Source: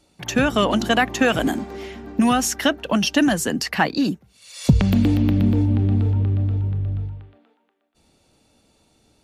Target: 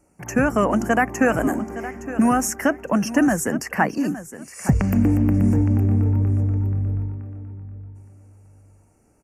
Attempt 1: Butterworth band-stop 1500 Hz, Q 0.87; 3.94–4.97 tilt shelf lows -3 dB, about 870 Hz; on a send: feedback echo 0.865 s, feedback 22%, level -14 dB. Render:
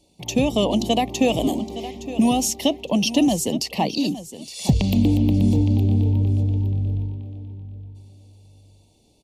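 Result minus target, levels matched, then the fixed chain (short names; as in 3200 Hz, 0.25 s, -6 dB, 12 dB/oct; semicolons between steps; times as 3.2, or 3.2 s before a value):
4000 Hz band +14.5 dB
Butterworth band-stop 3700 Hz, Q 0.87; 3.94–4.97 tilt shelf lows -3 dB, about 870 Hz; on a send: feedback echo 0.865 s, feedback 22%, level -14 dB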